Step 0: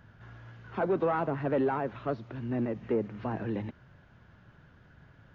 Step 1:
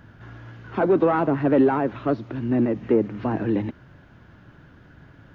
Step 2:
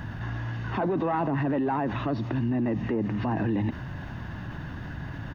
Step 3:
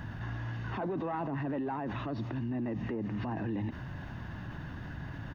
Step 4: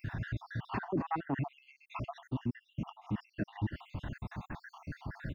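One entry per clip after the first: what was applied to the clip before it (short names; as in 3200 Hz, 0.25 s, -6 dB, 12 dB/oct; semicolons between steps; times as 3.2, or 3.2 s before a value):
bell 300 Hz +7.5 dB 0.54 oct; gain +7 dB
comb 1.1 ms, depth 45%; limiter -20.5 dBFS, peak gain reduction 11 dB; fast leveller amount 50%
limiter -23 dBFS, peak gain reduction 4.5 dB; gain -5 dB
random spectral dropouts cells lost 67%; gain +4 dB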